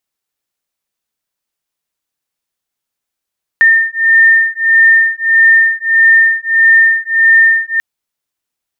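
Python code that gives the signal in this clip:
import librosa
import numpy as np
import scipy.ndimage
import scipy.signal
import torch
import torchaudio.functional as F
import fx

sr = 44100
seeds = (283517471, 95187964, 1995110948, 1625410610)

y = fx.two_tone_beats(sr, length_s=4.19, hz=1810.0, beat_hz=1.6, level_db=-9.0)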